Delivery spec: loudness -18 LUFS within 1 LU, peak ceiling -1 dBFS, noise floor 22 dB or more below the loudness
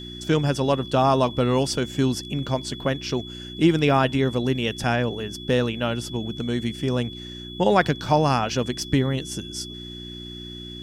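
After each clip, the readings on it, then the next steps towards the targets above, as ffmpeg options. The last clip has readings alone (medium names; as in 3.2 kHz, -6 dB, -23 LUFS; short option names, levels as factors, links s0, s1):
hum 60 Hz; highest harmonic 360 Hz; hum level -36 dBFS; steady tone 3.4 kHz; tone level -38 dBFS; loudness -23.5 LUFS; peak level -3.5 dBFS; loudness target -18.0 LUFS
-> -af "bandreject=f=60:t=h:w=4,bandreject=f=120:t=h:w=4,bandreject=f=180:t=h:w=4,bandreject=f=240:t=h:w=4,bandreject=f=300:t=h:w=4,bandreject=f=360:t=h:w=4"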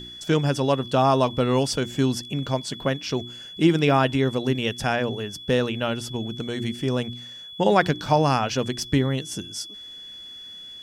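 hum not found; steady tone 3.4 kHz; tone level -38 dBFS
-> -af "bandreject=f=3400:w=30"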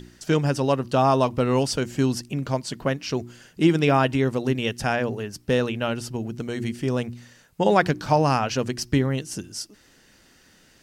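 steady tone not found; loudness -24.0 LUFS; peak level -4.5 dBFS; loudness target -18.0 LUFS
-> -af "volume=2,alimiter=limit=0.891:level=0:latency=1"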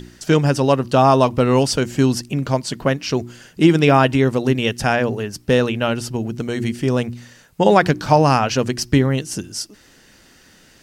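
loudness -18.0 LUFS; peak level -1.0 dBFS; noise floor -51 dBFS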